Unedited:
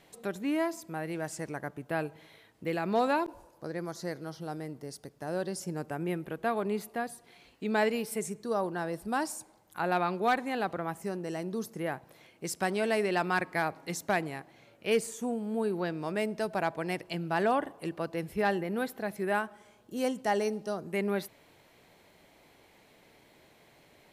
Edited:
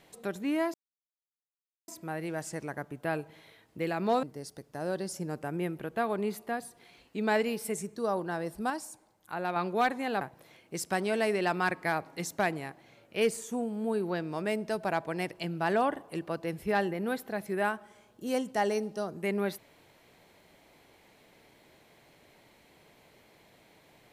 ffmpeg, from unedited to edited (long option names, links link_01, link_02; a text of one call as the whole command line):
ffmpeg -i in.wav -filter_complex "[0:a]asplit=6[link_01][link_02][link_03][link_04][link_05][link_06];[link_01]atrim=end=0.74,asetpts=PTS-STARTPTS,afade=type=out:start_time=0.736:duration=0.004:curve=hsin,apad=pad_dur=1.14[link_07];[link_02]atrim=start=0.74:end=3.092,asetpts=PTS-STARTPTS,afade=type=in:duration=0.004:curve=hsin[link_08];[link_03]atrim=start=4.698:end=9.172[link_09];[link_04]atrim=start=9.168:end=10.032,asetpts=PTS-STARTPTS,volume=-4.5dB[link_10];[link_05]atrim=start=10.028:end=10.682[link_11];[link_06]atrim=start=11.908[link_12];[link_07][link_08]concat=n=2:v=0:a=1[link_13];[link_13][link_09]acrossfade=duration=0.004:curve1=hsin:curve2=hsin[link_14];[link_14][link_10]acrossfade=duration=0.004:curve1=hsin:curve2=hsin[link_15];[link_15][link_11]acrossfade=duration=0.004:curve1=hsin:curve2=hsin[link_16];[link_16][link_12]acrossfade=duration=0.004:curve1=hsin:curve2=hsin" out.wav